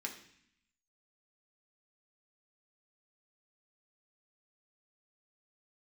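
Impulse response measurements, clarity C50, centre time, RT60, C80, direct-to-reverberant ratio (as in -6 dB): 9.5 dB, 16 ms, 0.65 s, 12.5 dB, 0.0 dB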